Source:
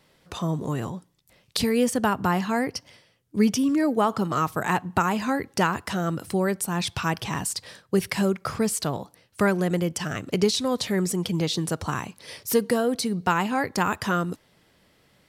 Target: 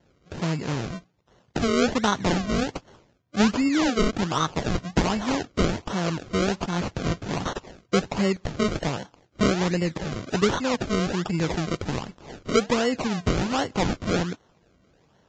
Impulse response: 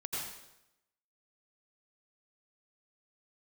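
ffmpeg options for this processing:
-af "acrusher=samples=35:mix=1:aa=0.000001:lfo=1:lforange=35:lforate=1.3" -ar 16000 -c:a libvorbis -b:a 32k

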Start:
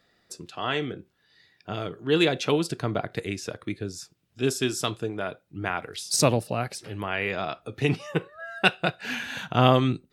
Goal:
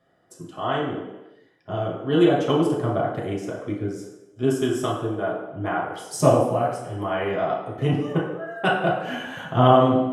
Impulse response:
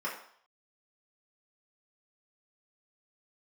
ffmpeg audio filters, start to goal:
-filter_complex "[0:a]equalizer=f=4.3k:w=1.3:g=-8[a];[1:a]atrim=start_sample=2205,afade=t=out:st=0.42:d=0.01,atrim=end_sample=18963,asetrate=25578,aresample=44100[b];[a][b]afir=irnorm=-1:irlink=0,volume=-5dB"

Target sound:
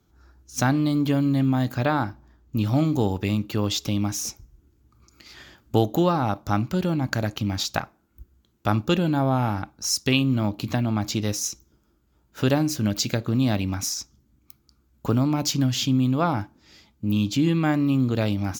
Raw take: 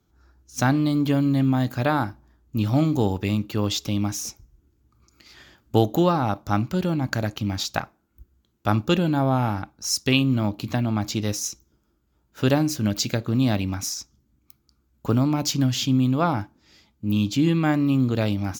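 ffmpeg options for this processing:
-filter_complex "[0:a]asettb=1/sr,asplit=3[a][b][c];[a]atrim=end=1.744[d];[b]atrim=start=1.74:end=2.56,asetpts=PTS-STARTPTS,afade=t=in:d=0.004:c=qsin,afade=t=out:st=0.816:d=0.004:c=qsin,equalizer=f=11k:t=o:w=0.58:g=-10[e];[c]atrim=start=2.556[f];[d][e]acrossfade=d=0.004:c1=hsin:c2=qsin[g];[g][f]acrossfade=d=0.004:c1=qsin:c2=hsin,asplit=2[h][i];[i]acompressor=threshold=-29dB:ratio=6,volume=0dB[j];[h][j]amix=inputs=2:normalize=0,volume=-3dB"

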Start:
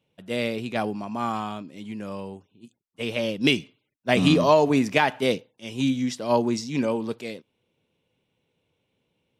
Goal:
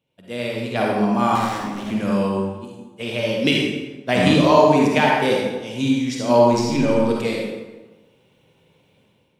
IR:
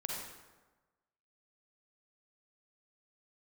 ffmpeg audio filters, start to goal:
-filter_complex "[0:a]asettb=1/sr,asplit=3[a][b][c];[a]atrim=end=6.534[d];[b]atrim=start=6.53:end=7.06,asetpts=PTS-STARTPTS,afade=t=in:d=0.004:c=qsin,afade=t=out:st=0.526:d=0.004:c=qsin,aeval=exprs='if(lt(val(0),0),0.708*val(0),val(0))':c=same[e];[c]atrim=start=7.056[f];[d][e]acrossfade=d=0.004:c1=hsin:c2=qsin[g];[g][f]acrossfade=d=0.004:c1=qsin:c2=hsin,dynaudnorm=f=500:g=3:m=15dB,asettb=1/sr,asplit=3[h][i][j];[h]atrim=end=1.354[k];[i]atrim=start=1.35:end=1.91,asetpts=PTS-STARTPTS,afade=t=in:d=0.004:c=qsin,afade=t=out:st=0.556:d=0.004:c=qsin,aeval=exprs='0.0596*(abs(mod(val(0)/0.0596+3,4)-2)-1)':c=same[l];[j]atrim=start=1.906[m];[k][l]acrossfade=d=0.004:c1=hsin:c2=qsin[n];[n][m]acrossfade=d=0.004:c1=qsin:c2=hsin[o];[1:a]atrim=start_sample=2205[p];[o][p]afir=irnorm=-1:irlink=0,volume=-1dB"

